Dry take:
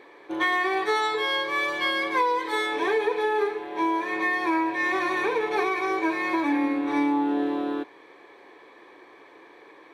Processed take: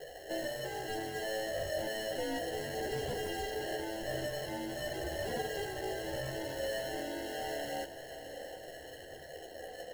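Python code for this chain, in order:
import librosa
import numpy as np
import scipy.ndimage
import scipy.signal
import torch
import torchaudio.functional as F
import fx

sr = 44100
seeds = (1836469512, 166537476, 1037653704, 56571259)

p1 = scipy.signal.sosfilt(scipy.signal.butter(2, 410.0, 'highpass', fs=sr, output='sos'), x)
p2 = fx.peak_eq(p1, sr, hz=2000.0, db=-14.0, octaves=0.45)
p3 = fx.over_compress(p2, sr, threshold_db=-38.0, ratio=-1.0)
p4 = p2 + (p3 * librosa.db_to_amplitude(-2.0))
p5 = fx.vowel_filter(p4, sr, vowel='e')
p6 = fx.sample_hold(p5, sr, seeds[0], rate_hz=1200.0, jitter_pct=0)
p7 = fx.fold_sine(p6, sr, drive_db=9, ceiling_db=-25.5)
p8 = fx.chorus_voices(p7, sr, voices=4, hz=0.37, base_ms=14, depth_ms=2.0, mix_pct=55)
p9 = p8 + fx.echo_diffused(p8, sr, ms=694, feedback_pct=59, wet_db=-13.0, dry=0)
y = p9 * librosa.db_to_amplitude(-5.0)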